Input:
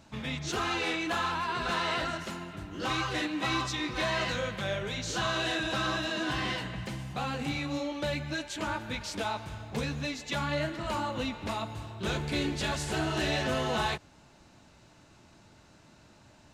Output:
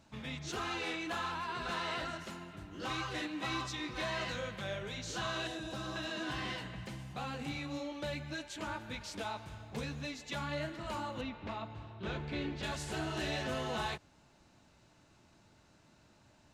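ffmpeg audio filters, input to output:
-filter_complex "[0:a]asettb=1/sr,asplit=3[a][b][c];[a]atrim=end=5.474[d];[b]atrim=start=5.47:end=5.96,asetpts=PTS-STARTPTS,afade=t=in:d=0.004:c=qsin,afade=t=out:st=0.486:d=0.004:c=qsin,equalizer=f=2k:t=o:w=2.2:g=-9[e];[c]atrim=start=5.956[f];[d][e]acrossfade=d=0.004:c1=hsin:c2=qsin[g];[g][f]acrossfade=d=0.004:c1=qsin:c2=hsin,asettb=1/sr,asplit=3[h][i][j];[h]atrim=end=11.214[k];[i]atrim=start=11.21:end=12.63,asetpts=PTS-STARTPTS,afade=t=in:d=0.004:c=qsin,afade=t=out:st=1.416:d=0.004:c=qsin,lowpass=3.3k[l];[j]atrim=start=12.626[m];[k][l]acrossfade=d=0.004:c1=hsin:c2=qsin[n];[n][m]acrossfade=d=0.004:c1=qsin:c2=hsin,volume=-7dB"

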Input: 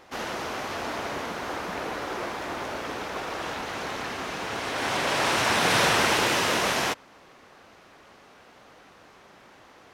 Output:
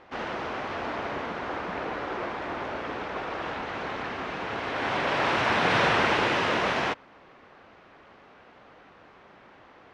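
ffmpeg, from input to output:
-af "lowpass=2.9k"

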